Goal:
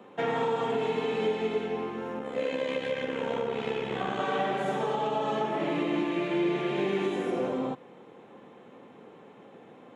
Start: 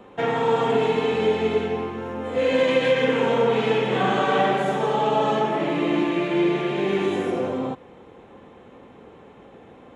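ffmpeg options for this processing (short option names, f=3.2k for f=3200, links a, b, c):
-filter_complex "[0:a]highpass=f=130:w=0.5412,highpass=f=130:w=1.3066,alimiter=limit=-15dB:level=0:latency=1:release=393,asettb=1/sr,asplit=3[a][b][c];[a]atrim=end=2.194[d];[b]atrim=start=2.19:end=4.2,asetpts=PTS-STARTPTS,afade=t=in:d=0.004:c=qsin,afade=t=out:st=2.006:d=0.004:c=qsin,tremolo=f=68:d=0.667[e];[c]atrim=start=4.196[f];[d][e]acrossfade=d=0.004:c1=hsin:c2=qsin[g];[g][f]acrossfade=d=0.004:c1=qsin:c2=hsin,volume=-4dB"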